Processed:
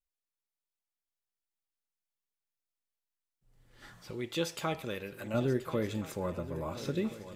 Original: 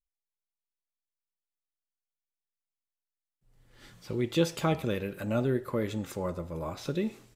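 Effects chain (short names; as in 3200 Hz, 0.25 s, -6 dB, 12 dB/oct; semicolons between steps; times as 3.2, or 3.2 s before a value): 3.82–4.05 spectral gain 590–2000 Hz +7 dB; 4.1–5.34 low shelf 480 Hz -9 dB; swung echo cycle 1.372 s, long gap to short 3:1, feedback 46%, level -14 dB; gain -2 dB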